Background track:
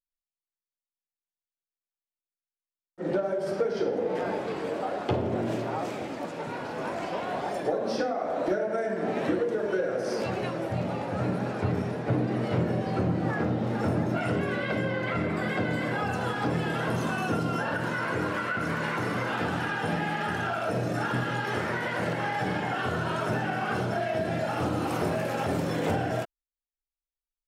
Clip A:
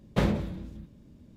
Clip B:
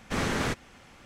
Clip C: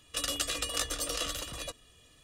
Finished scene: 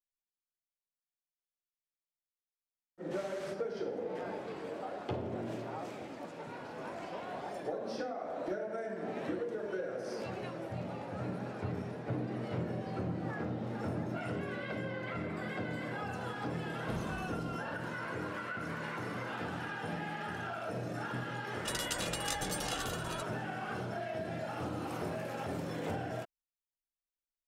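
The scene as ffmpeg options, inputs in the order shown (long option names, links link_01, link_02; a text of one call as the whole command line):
ffmpeg -i bed.wav -i cue0.wav -i cue1.wav -i cue2.wav -filter_complex "[0:a]volume=-10dB[link_01];[2:a]highpass=frequency=490:poles=1[link_02];[1:a]acompressor=threshold=-28dB:ratio=6:attack=3.2:release=140:knee=1:detection=peak[link_03];[link_02]atrim=end=1.05,asetpts=PTS-STARTPTS,volume=-18dB,afade=type=in:duration=0.004:curve=hsin,afade=type=out:start_time=1.046:duration=0.004:curve=hsin,adelay=3000[link_04];[link_03]atrim=end=1.36,asetpts=PTS-STARTPTS,volume=-10dB,afade=type=in:duration=0.004:curve=hsin,afade=type=out:start_time=1.356:duration=0.004:curve=hsin,adelay=16720[link_05];[3:a]atrim=end=2.23,asetpts=PTS-STARTPTS,volume=-5.5dB,afade=type=in:duration=0.004:curve=hsin,afade=type=out:start_time=2.226:duration=0.004:curve=hsin,adelay=21510[link_06];[link_01][link_04][link_05][link_06]amix=inputs=4:normalize=0" out.wav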